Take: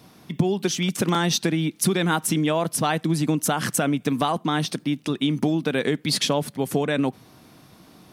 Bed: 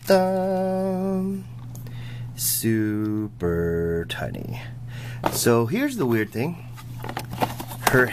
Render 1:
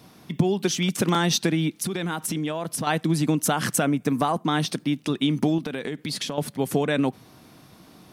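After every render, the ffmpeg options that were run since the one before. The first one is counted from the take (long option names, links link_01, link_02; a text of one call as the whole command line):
ffmpeg -i in.wav -filter_complex "[0:a]asettb=1/sr,asplit=3[link_01][link_02][link_03];[link_01]atrim=end=1.704[link_04];[link_02]atrim=start=1.7:end=2.87,asetpts=PTS-STARTPTS,afade=type=in:duration=0.004:curve=qsin,afade=type=out:start_time=1.166:duration=0.004:curve=qsin,acompressor=threshold=-24dB:ratio=5:attack=3.2:release=140:knee=1:detection=peak[link_05];[link_03]atrim=start=2.866[link_06];[link_04][link_05]acrossfade=duration=0.004:curve1=hsin:curve2=qsin[link_07];[link_07][link_06]acrossfade=duration=0.004:curve1=qsin:curve2=hsin,asettb=1/sr,asplit=3[link_08][link_09][link_10];[link_08]atrim=end=3.854[link_11];[link_09]atrim=start=3.85:end=4.48,asetpts=PTS-STARTPTS,afade=type=in:duration=0.004:curve=qsin,afade=type=out:start_time=0.626:duration=0.004:curve=qsin,equalizer=frequency=3300:width_type=o:width=0.82:gain=-8[link_12];[link_10]atrim=start=4.476[link_13];[link_11][link_12]acrossfade=duration=0.004:curve1=hsin:curve2=qsin[link_14];[link_14][link_13]acrossfade=duration=0.004:curve1=qsin:curve2=hsin,asettb=1/sr,asplit=3[link_15][link_16][link_17];[link_15]atrim=end=5.584[link_18];[link_16]atrim=start=5.58:end=6.38,asetpts=PTS-STARTPTS,afade=type=in:duration=0.004:curve=qsin,afade=type=out:start_time=0.796:duration=0.004:curve=qsin,acompressor=threshold=-26dB:ratio=6:attack=3.2:release=140:knee=1:detection=peak[link_19];[link_17]atrim=start=6.376[link_20];[link_18][link_19]acrossfade=duration=0.004:curve1=hsin:curve2=qsin[link_21];[link_21][link_20]acrossfade=duration=0.004:curve1=qsin:curve2=hsin" out.wav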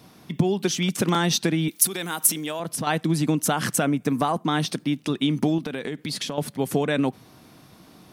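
ffmpeg -i in.wav -filter_complex "[0:a]asettb=1/sr,asplit=3[link_01][link_02][link_03];[link_01]atrim=end=1.684[link_04];[link_02]atrim=start=1.68:end=2.6,asetpts=PTS-STARTPTS,afade=type=in:duration=0.004:curve=qsin,afade=type=out:start_time=0.916:duration=0.004:curve=qsin,aemphasis=mode=production:type=bsi[link_05];[link_03]atrim=start=2.596[link_06];[link_04][link_05]acrossfade=duration=0.004:curve1=hsin:curve2=qsin[link_07];[link_07][link_06]acrossfade=duration=0.004:curve1=qsin:curve2=hsin" out.wav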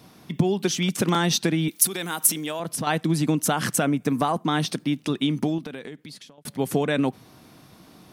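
ffmpeg -i in.wav -filter_complex "[0:a]asplit=2[link_01][link_02];[link_01]atrim=end=6.45,asetpts=PTS-STARTPTS,afade=type=out:start_time=5.15:duration=1.3[link_03];[link_02]atrim=start=6.45,asetpts=PTS-STARTPTS,afade=type=in:duration=0.004:curve=hsin[link_04];[link_03][link_04]concat=n=2:v=0:a=1" out.wav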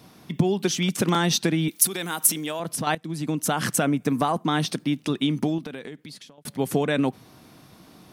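ffmpeg -i in.wav -filter_complex "[0:a]asplit=2[link_01][link_02];[link_01]atrim=end=2.95,asetpts=PTS-STARTPTS,afade=type=out:start_time=2.946:duration=0.004:curve=hsin:silence=0.149624[link_03];[link_02]atrim=start=2.95,asetpts=PTS-STARTPTS,afade=type=in:duration=0.67:silence=0.149624[link_04];[link_03][link_04]concat=n=2:v=0:a=1" out.wav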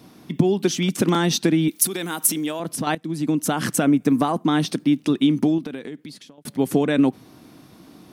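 ffmpeg -i in.wav -af "equalizer=frequency=290:width_type=o:width=0.92:gain=7" out.wav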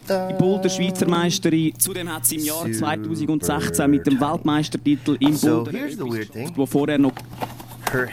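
ffmpeg -i in.wav -i bed.wav -filter_complex "[1:a]volume=-4.5dB[link_01];[0:a][link_01]amix=inputs=2:normalize=0" out.wav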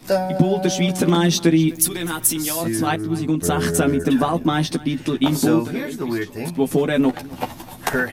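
ffmpeg -i in.wav -filter_complex "[0:a]asplit=2[link_01][link_02];[link_02]adelay=12,volume=-3.5dB[link_03];[link_01][link_03]amix=inputs=2:normalize=0,aecho=1:1:253:0.106" out.wav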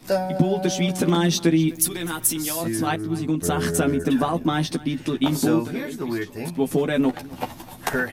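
ffmpeg -i in.wav -af "volume=-3dB" out.wav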